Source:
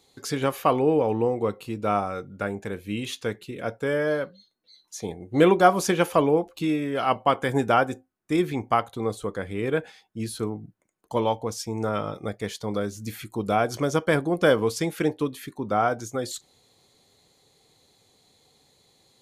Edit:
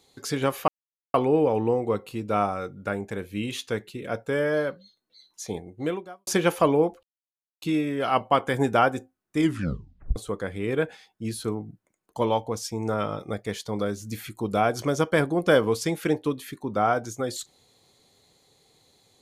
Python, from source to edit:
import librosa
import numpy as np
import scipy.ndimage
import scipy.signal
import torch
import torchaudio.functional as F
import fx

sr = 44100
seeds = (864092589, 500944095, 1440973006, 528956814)

y = fx.edit(x, sr, fx.insert_silence(at_s=0.68, length_s=0.46),
    fx.fade_out_span(start_s=5.11, length_s=0.7, curve='qua'),
    fx.insert_silence(at_s=6.57, length_s=0.59),
    fx.tape_stop(start_s=8.33, length_s=0.78), tone=tone)